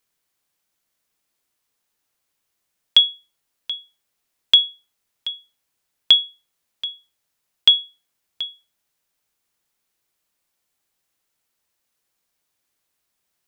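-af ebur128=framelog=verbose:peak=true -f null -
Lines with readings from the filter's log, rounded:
Integrated loudness:
  I:         -15.8 LUFS
  Threshold: -29.9 LUFS
Loudness range:
  LRA:         4.0 LU
  Threshold: -42.2 LUFS
  LRA low:   -24.6 LUFS
  LRA high:  -20.6 LUFS
True peak:
  Peak:       -2.2 dBFS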